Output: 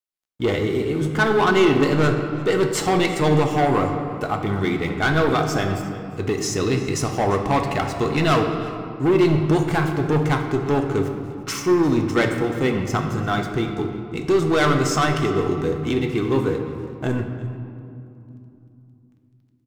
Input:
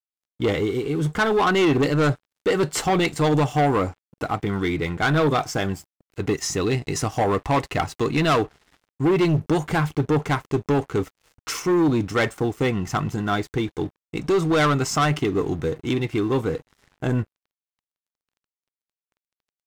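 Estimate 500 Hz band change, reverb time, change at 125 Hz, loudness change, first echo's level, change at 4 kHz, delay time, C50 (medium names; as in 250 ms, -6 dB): +2.5 dB, 2.8 s, +1.5 dB, +1.5 dB, -20.0 dB, +1.0 dB, 348 ms, 6.0 dB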